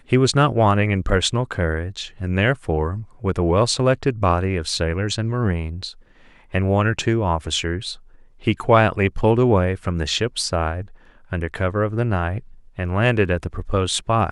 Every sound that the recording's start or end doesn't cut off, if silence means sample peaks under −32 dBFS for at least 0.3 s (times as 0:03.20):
0:06.54–0:07.94
0:08.43–0:10.84
0:11.32–0:12.40